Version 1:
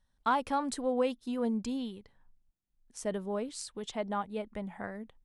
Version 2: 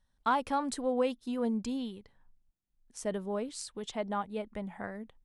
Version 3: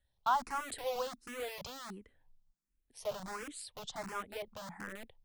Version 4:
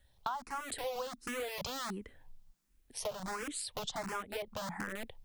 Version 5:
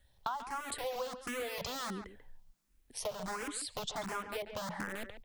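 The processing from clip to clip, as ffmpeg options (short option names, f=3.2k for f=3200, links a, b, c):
-af anull
-filter_complex "[0:a]acrossover=split=460|940[a][b][c];[a]aeval=exprs='(mod(89.1*val(0)+1,2)-1)/89.1':c=same[d];[d][b][c]amix=inputs=3:normalize=0,asplit=2[e][f];[f]afreqshift=1.4[g];[e][g]amix=inputs=2:normalize=1"
-af "acompressor=threshold=-48dB:ratio=6,volume=11.5dB"
-filter_complex "[0:a]asplit=2[a][b];[b]adelay=140,highpass=300,lowpass=3.4k,asoftclip=type=hard:threshold=-30.5dB,volume=-9dB[c];[a][c]amix=inputs=2:normalize=0"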